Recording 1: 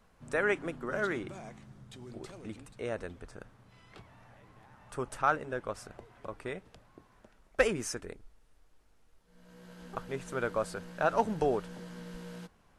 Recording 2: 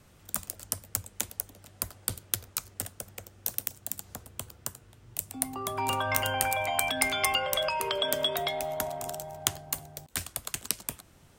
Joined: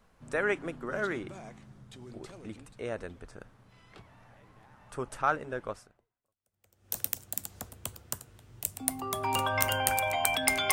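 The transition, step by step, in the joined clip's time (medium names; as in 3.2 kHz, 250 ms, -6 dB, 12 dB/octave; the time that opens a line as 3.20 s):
recording 1
6.34 s: go over to recording 2 from 2.88 s, crossfade 1.24 s exponential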